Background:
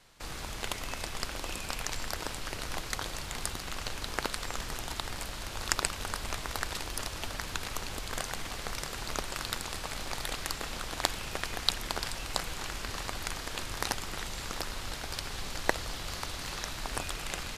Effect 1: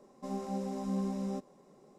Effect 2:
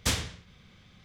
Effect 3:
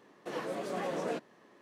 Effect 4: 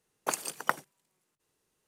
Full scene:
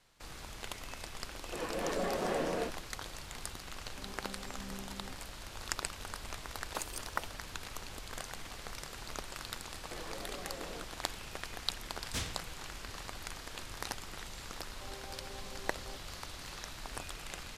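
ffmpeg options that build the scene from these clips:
-filter_complex "[3:a]asplit=2[s0][s1];[1:a]asplit=2[s2][s3];[0:a]volume=0.422[s4];[s0]aecho=1:1:215.7|253.6:0.794|0.891[s5];[s1]acompressor=threshold=0.01:ratio=6:attack=3.2:release=140:knee=1:detection=peak[s6];[s3]highpass=f=340:w=0.5412,highpass=f=340:w=1.3066[s7];[s5]atrim=end=1.61,asetpts=PTS-STARTPTS,volume=0.794,afade=t=in:d=0.004:c=hsin,afade=t=out:st=1.606:d=0.004:c=hsin,adelay=1260[s8];[s2]atrim=end=1.98,asetpts=PTS-STARTPTS,volume=0.2,afade=t=in:d=0.004:c=hsin,afade=t=out:st=1.976:d=0.004:c=hsin,adelay=3740[s9];[4:a]atrim=end=1.87,asetpts=PTS-STARTPTS,volume=0.376,afade=t=in:d=0.004:c=hsin,afade=t=out:st=1.866:d=0.004:c=hsin,adelay=6480[s10];[s6]atrim=end=1.61,asetpts=PTS-STARTPTS,volume=0.708,afade=t=in:d=0.004:c=hsin,afade=t=out:st=1.606:d=0.004:c=hsin,adelay=9650[s11];[2:a]atrim=end=1.04,asetpts=PTS-STARTPTS,volume=0.355,afade=t=in:d=0.1,afade=t=out:st=0.94:d=0.1,adelay=12080[s12];[s7]atrim=end=1.98,asetpts=PTS-STARTPTS,volume=0.335,afade=t=in:d=0.004:c=hsin,afade=t=out:st=1.976:d=0.004:c=hsin,adelay=14570[s13];[s4][s8][s9][s10][s11][s12][s13]amix=inputs=7:normalize=0"

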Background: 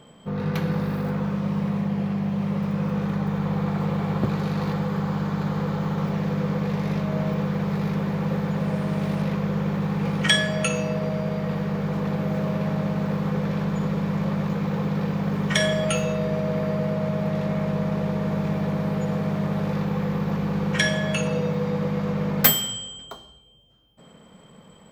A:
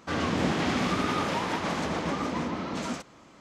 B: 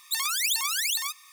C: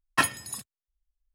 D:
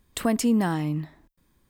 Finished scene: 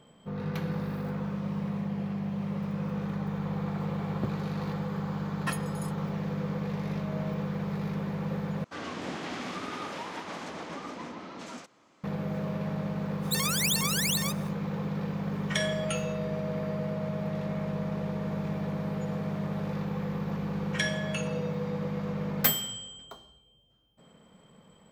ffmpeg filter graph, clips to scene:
-filter_complex "[0:a]volume=0.422[s0];[1:a]highpass=f=230:p=1[s1];[s0]asplit=2[s2][s3];[s2]atrim=end=8.644[s4];[s1]atrim=end=3.4,asetpts=PTS-STARTPTS,volume=0.398[s5];[s3]atrim=start=12.036[s6];[3:a]atrim=end=1.34,asetpts=PTS-STARTPTS,volume=0.282,afade=t=in:d=0.004:c=hsin,afade=t=out:st=1.336:d=0.004:c=hsin,adelay=233289S[s7];[2:a]atrim=end=1.32,asetpts=PTS-STARTPTS,volume=0.794,afade=t=in:d=0.05,afade=t=out:st=1.27:d=0.05,adelay=13200[s8];[s4][s5]acrossfade=d=0.004:c1=hsin:c2=hsin[s9];[s9][s6]acrossfade=d=0.004:c1=hsin:c2=hsin[s10];[s10][s7][s8]amix=inputs=3:normalize=0"

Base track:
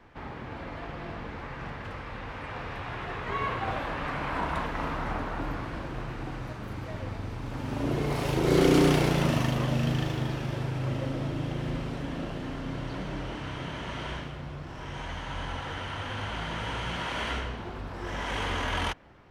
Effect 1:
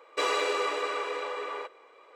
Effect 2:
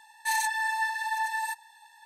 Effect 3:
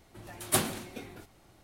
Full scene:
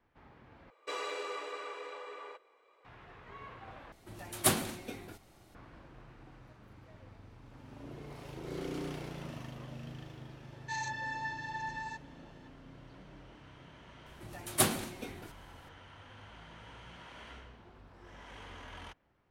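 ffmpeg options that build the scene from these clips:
-filter_complex "[3:a]asplit=2[s0][s1];[0:a]volume=0.119[s2];[2:a]aresample=16000,aresample=44100[s3];[s2]asplit=3[s4][s5][s6];[s4]atrim=end=0.704[s7];[1:a]atrim=end=2.15,asetpts=PTS-STARTPTS,volume=0.282[s8];[s5]atrim=start=2.846:end=3.924[s9];[s0]atrim=end=1.63,asetpts=PTS-STARTPTS,volume=0.944[s10];[s6]atrim=start=5.546[s11];[s3]atrim=end=2.05,asetpts=PTS-STARTPTS,volume=0.316,afade=t=in:d=0.004:c=hsin,afade=t=out:st=2.046:d=0.004:c=hsin,adelay=10430[s12];[s1]atrim=end=1.63,asetpts=PTS-STARTPTS,volume=0.944,afade=t=in:d=0.004:c=hsin,afade=t=out:st=1.626:d=0.004:c=hsin,adelay=14060[s13];[s7][s8]acrossfade=d=0.004:c1=hsin:c2=hsin[s14];[s14][s9]acrossfade=d=0.004:c1=hsin:c2=hsin[s15];[s15][s10]acrossfade=d=0.004:c1=hsin:c2=hsin[s16];[s16][s11]acrossfade=d=0.004:c1=hsin:c2=hsin[s17];[s17][s12][s13]amix=inputs=3:normalize=0"

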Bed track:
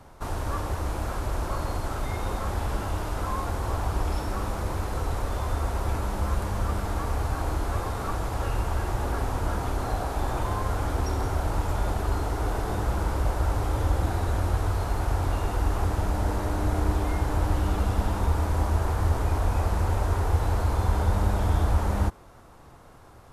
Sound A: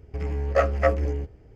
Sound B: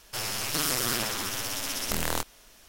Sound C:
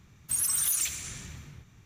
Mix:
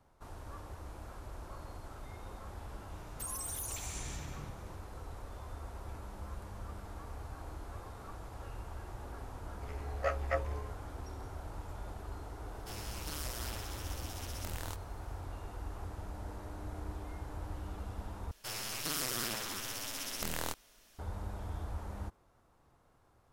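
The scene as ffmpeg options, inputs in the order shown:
-filter_complex "[2:a]asplit=2[s0][s1];[0:a]volume=0.133[s2];[3:a]acompressor=threshold=0.01:ratio=6:attack=3.2:release=140:knee=1:detection=peak[s3];[1:a]equalizer=f=200:t=o:w=2:g=-15[s4];[s2]asplit=2[s5][s6];[s5]atrim=end=18.314[s7];[s1]atrim=end=2.68,asetpts=PTS-STARTPTS,volume=0.376[s8];[s6]atrim=start=20.986[s9];[s3]atrim=end=1.85,asetpts=PTS-STARTPTS,afade=t=in:d=0.004:c=hsin,afade=t=out:st=1.846:d=0.004:c=hsin,adelay=2910[s10];[s4]atrim=end=1.55,asetpts=PTS-STARTPTS,volume=0.355,afade=t=in:d=0.004:c=hsin,afade=t=out:st=1.546:d=0.004:c=hsin,adelay=9480[s11];[s0]atrim=end=2.68,asetpts=PTS-STARTPTS,volume=0.168,afade=t=in:d=0.004:c=hsin,afade=t=out:st=2.676:d=0.004:c=hsin,adelay=12530[s12];[s7][s8]acrossfade=d=0.004:c1=hsin:c2=hsin[s13];[s13][s9]acrossfade=d=0.004:c1=hsin:c2=hsin[s14];[s14][s10][s11][s12]amix=inputs=4:normalize=0"

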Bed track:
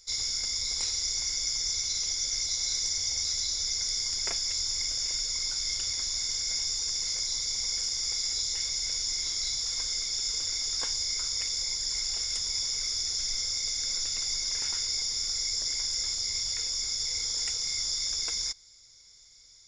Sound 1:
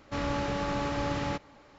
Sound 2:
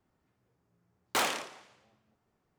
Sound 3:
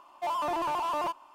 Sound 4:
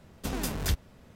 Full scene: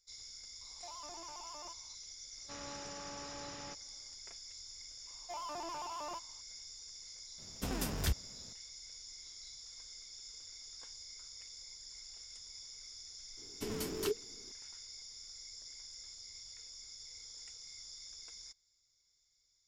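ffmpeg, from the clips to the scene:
-filter_complex "[3:a]asplit=2[s0][s1];[4:a]asplit=2[s2][s3];[0:a]volume=0.1[s4];[s0]acompressor=threshold=0.0178:ratio=6:attack=3.2:release=140:knee=1:detection=peak[s5];[1:a]lowshelf=f=280:g=-9[s6];[s3]afreqshift=-480[s7];[s5]atrim=end=1.34,asetpts=PTS-STARTPTS,volume=0.2,afade=t=in:d=0.004:c=hsin,afade=t=out:st=1.336:d=0.004:c=hsin,adelay=610[s8];[s6]atrim=end=1.78,asetpts=PTS-STARTPTS,volume=0.188,afade=t=in:d=0.004:c=hsin,afade=t=out:st=1.776:d=0.004:c=hsin,adelay=2370[s9];[s1]atrim=end=1.34,asetpts=PTS-STARTPTS,volume=0.224,afade=t=in:d=0.004:c=hsin,afade=t=out:st=1.336:d=0.004:c=hsin,adelay=5070[s10];[s2]atrim=end=1.15,asetpts=PTS-STARTPTS,volume=0.562,afade=t=in:d=0.004:c=hsin,afade=t=out:st=1.146:d=0.004:c=hsin,adelay=325458S[s11];[s7]atrim=end=1.15,asetpts=PTS-STARTPTS,volume=0.422,afade=t=in:d=0.004:c=hsin,afade=t=out:st=1.146:d=0.004:c=hsin,adelay=13370[s12];[s4][s8][s9][s10][s11][s12]amix=inputs=6:normalize=0"

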